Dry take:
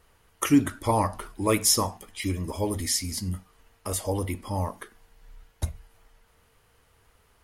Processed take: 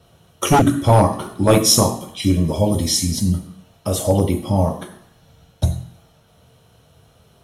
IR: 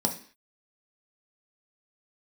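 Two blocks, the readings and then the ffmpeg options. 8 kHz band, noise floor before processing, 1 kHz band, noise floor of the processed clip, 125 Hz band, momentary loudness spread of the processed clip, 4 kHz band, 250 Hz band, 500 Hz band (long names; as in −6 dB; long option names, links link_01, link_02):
+6.5 dB, −64 dBFS, +9.5 dB, −55 dBFS, +13.0 dB, 10 LU, +9.0 dB, +8.5 dB, +11.5 dB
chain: -filter_complex "[0:a]bandreject=frequency=420:width=12[link_01];[1:a]atrim=start_sample=2205,asetrate=31752,aresample=44100[link_02];[link_01][link_02]afir=irnorm=-1:irlink=0,acrossover=split=850|1300[link_03][link_04][link_05];[link_03]aeval=exprs='0.631*(abs(mod(val(0)/0.631+3,4)-2)-1)':channel_layout=same[link_06];[link_06][link_04][link_05]amix=inputs=3:normalize=0,volume=-2dB"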